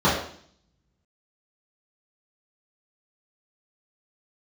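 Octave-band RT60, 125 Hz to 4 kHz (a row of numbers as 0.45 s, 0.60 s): 0.85 s, 0.75 s, 0.55 s, 0.55 s, 0.55 s, 0.65 s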